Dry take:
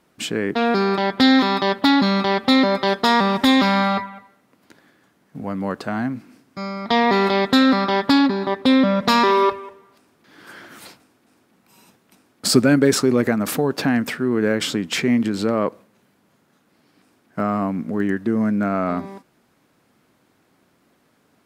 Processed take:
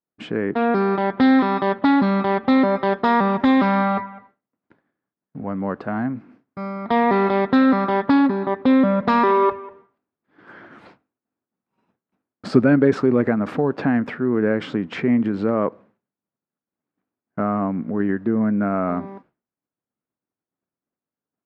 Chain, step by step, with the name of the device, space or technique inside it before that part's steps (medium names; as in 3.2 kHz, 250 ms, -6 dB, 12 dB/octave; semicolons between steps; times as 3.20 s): hearing-loss simulation (low-pass 1.7 kHz 12 dB/octave; expander -44 dBFS)